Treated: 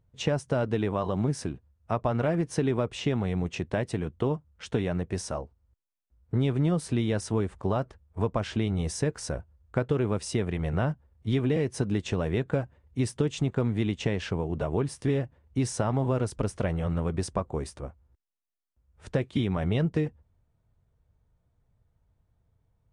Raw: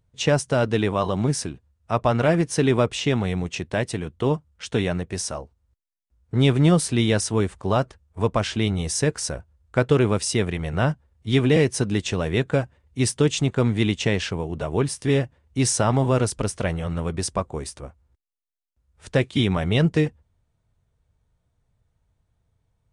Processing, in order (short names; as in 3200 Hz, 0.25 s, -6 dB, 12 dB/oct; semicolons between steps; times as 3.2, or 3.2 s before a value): compressor 4:1, threshold -23 dBFS, peak gain reduction 9 dB; high shelf 2200 Hz -10 dB